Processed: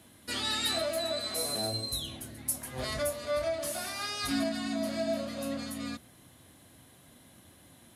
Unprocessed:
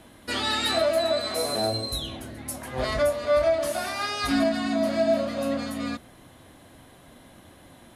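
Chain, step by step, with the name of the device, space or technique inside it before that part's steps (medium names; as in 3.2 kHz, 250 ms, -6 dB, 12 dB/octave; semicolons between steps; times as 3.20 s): high-pass 82 Hz; smiley-face EQ (bass shelf 160 Hz +4.5 dB; peaking EQ 690 Hz -4 dB 2.6 oct; treble shelf 5.1 kHz +8.5 dB); 1.98–3.31 s: treble shelf 9.3 kHz +5 dB; trim -6.5 dB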